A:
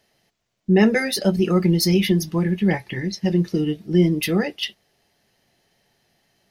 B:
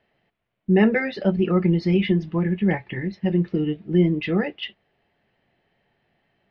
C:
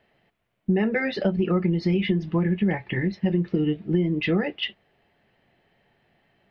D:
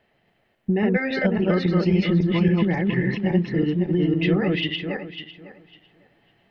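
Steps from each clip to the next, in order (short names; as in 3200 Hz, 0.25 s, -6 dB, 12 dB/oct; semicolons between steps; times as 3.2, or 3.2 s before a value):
LPF 2900 Hz 24 dB/oct; gain -1.5 dB
compressor 10:1, threshold -22 dBFS, peak gain reduction 11 dB; gain +3.5 dB
regenerating reverse delay 0.276 s, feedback 42%, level -1 dB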